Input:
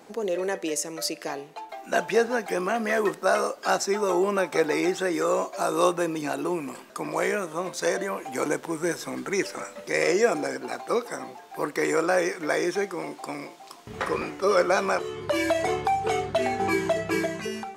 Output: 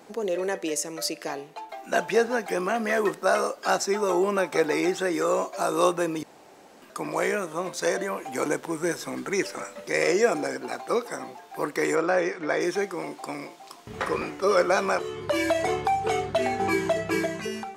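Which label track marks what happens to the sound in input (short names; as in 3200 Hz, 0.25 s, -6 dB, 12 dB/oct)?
6.230000	6.820000	room tone
11.950000	12.610000	air absorption 120 m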